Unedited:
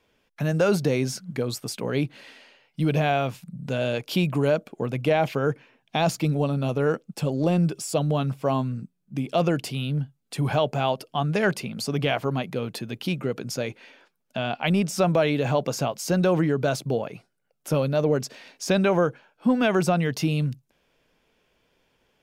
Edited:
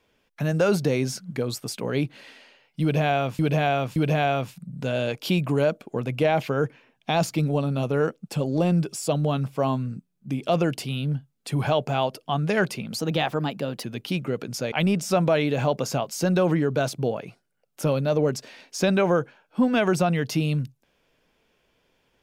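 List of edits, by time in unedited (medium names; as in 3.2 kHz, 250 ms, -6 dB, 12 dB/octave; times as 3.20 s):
2.82–3.39 s: loop, 3 plays
11.84–12.80 s: speed 112%
13.68–14.59 s: delete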